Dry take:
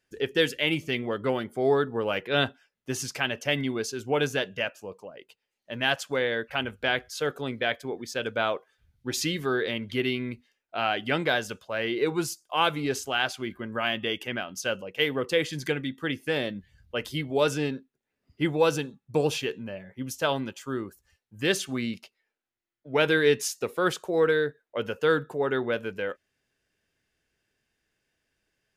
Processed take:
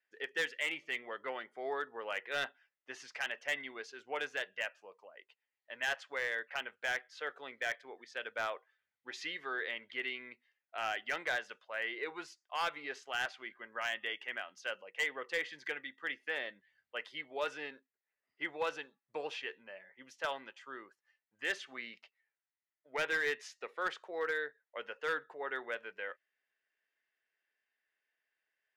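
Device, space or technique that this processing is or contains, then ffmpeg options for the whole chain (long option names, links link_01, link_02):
megaphone: -af "highpass=690,lowpass=3200,equalizer=frequency=1900:width_type=o:width=0.29:gain=8,asoftclip=type=hard:threshold=-19dB,volume=-8dB"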